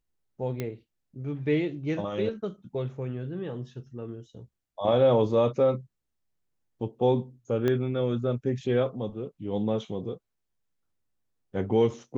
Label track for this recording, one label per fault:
0.600000	0.600000	click −18 dBFS
7.680000	7.680000	click −15 dBFS

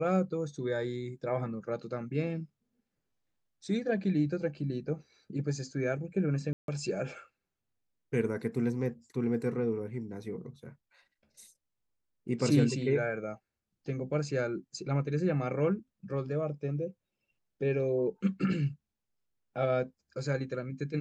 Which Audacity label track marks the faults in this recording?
6.530000	6.680000	drop-out 152 ms

